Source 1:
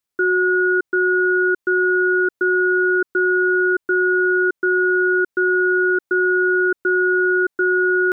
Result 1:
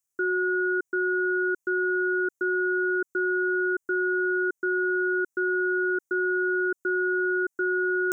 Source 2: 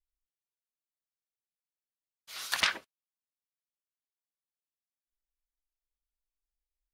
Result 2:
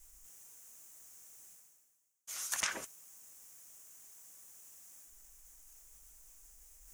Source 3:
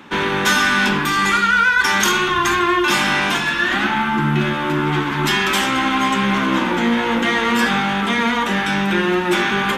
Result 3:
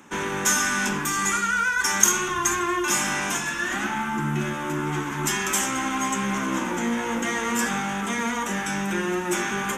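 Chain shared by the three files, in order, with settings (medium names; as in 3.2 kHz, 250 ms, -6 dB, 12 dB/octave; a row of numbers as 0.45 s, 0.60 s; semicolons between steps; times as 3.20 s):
reverse; upward compressor, threshold -27 dBFS; reverse; resonant high shelf 5.3 kHz +8 dB, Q 3; trim -8 dB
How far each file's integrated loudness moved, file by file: -8.5 LU, -13.5 LU, -7.0 LU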